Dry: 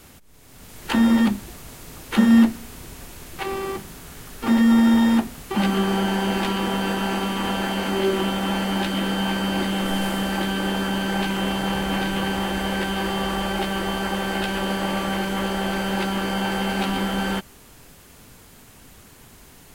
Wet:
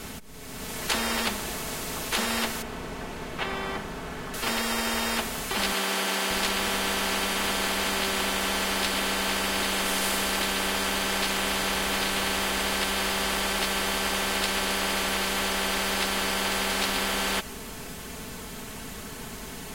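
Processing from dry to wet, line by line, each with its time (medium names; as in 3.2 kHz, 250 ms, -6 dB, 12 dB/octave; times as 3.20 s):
2.62–4.34 s: low-pass 1.5 kHz 6 dB/octave
5.72–6.31 s: high-pass 310 Hz
whole clip: treble shelf 10 kHz -6 dB; comb 4.6 ms, depth 51%; spectrum-flattening compressor 4:1; trim -6.5 dB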